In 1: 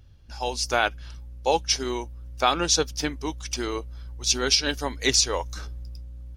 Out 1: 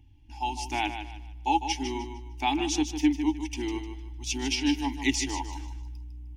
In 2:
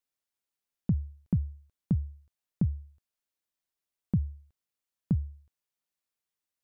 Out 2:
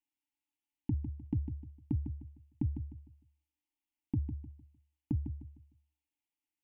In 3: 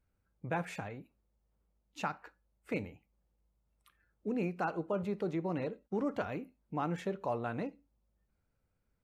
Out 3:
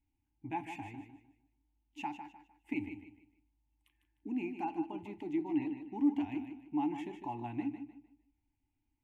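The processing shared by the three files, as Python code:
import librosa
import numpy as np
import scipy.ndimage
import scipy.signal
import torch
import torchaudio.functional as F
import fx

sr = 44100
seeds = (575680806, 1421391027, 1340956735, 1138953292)

p1 = fx.curve_eq(x, sr, hz=(120.0, 180.0, 300.0, 520.0, 860.0, 1300.0, 2000.0, 2900.0, 4100.0, 6800.0), db=(0, -13, 14, -28, 8, -24, 1, 4, -11, -5))
p2 = p1 + fx.echo_feedback(p1, sr, ms=152, feedback_pct=31, wet_db=-9.0, dry=0)
y = p2 * 10.0 ** (-4.0 / 20.0)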